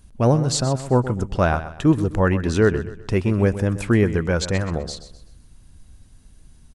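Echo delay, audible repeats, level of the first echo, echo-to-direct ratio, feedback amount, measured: 127 ms, 3, −13.0 dB, −12.5 dB, 36%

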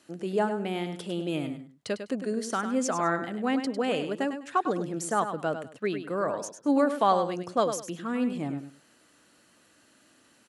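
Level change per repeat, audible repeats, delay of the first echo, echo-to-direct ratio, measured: −13.0 dB, 2, 101 ms, −9.0 dB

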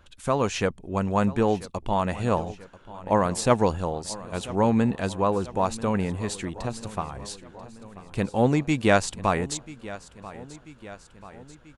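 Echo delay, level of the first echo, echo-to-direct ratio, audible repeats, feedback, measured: 988 ms, −17.5 dB, −16.0 dB, 4, 58%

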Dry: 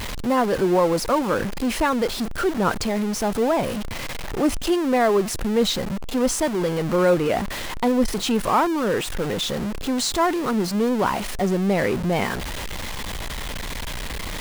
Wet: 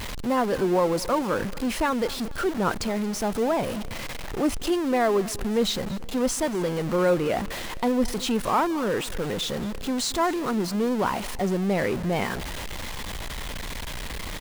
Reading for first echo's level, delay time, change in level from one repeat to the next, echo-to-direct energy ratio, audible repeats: −20.0 dB, 228 ms, −8.5 dB, −19.5 dB, 2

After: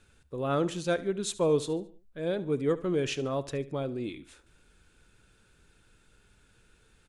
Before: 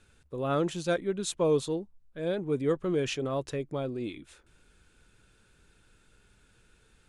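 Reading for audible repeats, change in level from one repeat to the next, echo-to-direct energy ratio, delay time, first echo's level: 3, −8.0 dB, −17.0 dB, 72 ms, −17.5 dB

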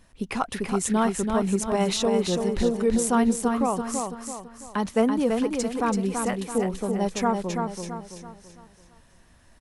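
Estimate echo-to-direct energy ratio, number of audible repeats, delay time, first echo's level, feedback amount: −4.0 dB, 4, 333 ms, −5.0 dB, 41%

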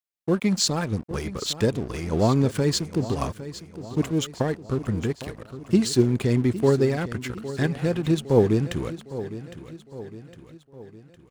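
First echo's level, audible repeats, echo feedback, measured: −14.0 dB, 4, 51%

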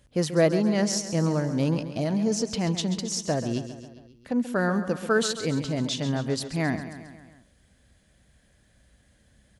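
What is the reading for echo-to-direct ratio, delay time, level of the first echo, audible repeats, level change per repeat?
−9.5 dB, 135 ms, −11.5 dB, 5, −4.5 dB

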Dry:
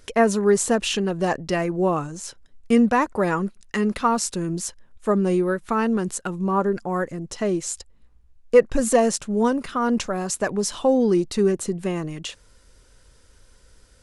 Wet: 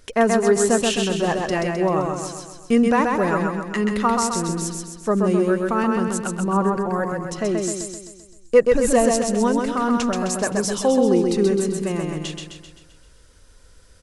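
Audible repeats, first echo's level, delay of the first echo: 6, −3.5 dB, 130 ms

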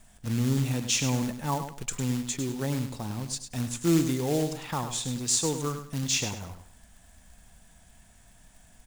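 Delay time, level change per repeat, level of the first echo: 102 ms, −11.5 dB, −9.0 dB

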